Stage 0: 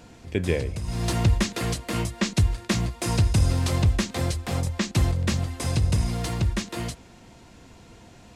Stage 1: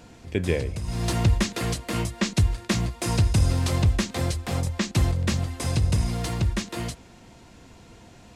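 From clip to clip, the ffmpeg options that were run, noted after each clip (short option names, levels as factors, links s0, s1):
-af anull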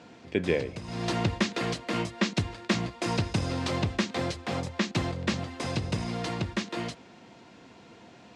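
-af "highpass=180,lowpass=4700"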